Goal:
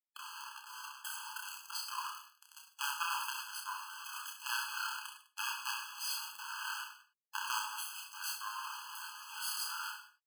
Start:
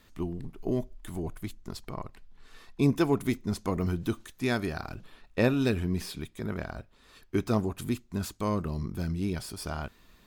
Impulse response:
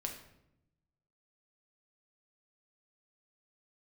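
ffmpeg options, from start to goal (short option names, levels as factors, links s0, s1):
-filter_complex "[0:a]acrusher=bits=4:dc=4:mix=0:aa=0.000001,aeval=exprs='0.282*(cos(1*acos(clip(val(0)/0.282,-1,1)))-cos(1*PI/2))+0.126*(cos(2*acos(clip(val(0)/0.282,-1,1)))-cos(2*PI/2))+0.0355*(cos(8*acos(clip(val(0)/0.282,-1,1)))-cos(8*PI/2))':c=same,asplit=2[s0][s1];[s1]aecho=0:1:30|64.5|104.2|149.8|202.3:0.631|0.398|0.251|0.158|0.1[s2];[s0][s2]amix=inputs=2:normalize=0[s3];[1:a]atrim=start_sample=2205,afade=t=out:st=0.17:d=0.01,atrim=end_sample=7938[s4];[s3][s4]afir=irnorm=-1:irlink=0,areverse,acompressor=threshold=0.0282:ratio=6,areverse,highpass=830,afftfilt=real='re*eq(mod(floor(b*sr/1024/840),2),1)':imag='im*eq(mod(floor(b*sr/1024/840),2),1)':win_size=1024:overlap=0.75,volume=3.55"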